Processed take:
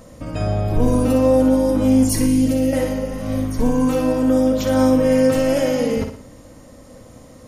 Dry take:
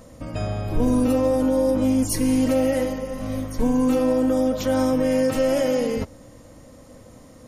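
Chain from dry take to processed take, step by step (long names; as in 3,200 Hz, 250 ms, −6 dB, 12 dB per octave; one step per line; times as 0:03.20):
0:02.26–0:02.73: parametric band 1,100 Hz −13 dB 1.9 octaves
on a send: flutter between parallel walls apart 9.9 metres, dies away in 0.48 s
on the sum: level +2.5 dB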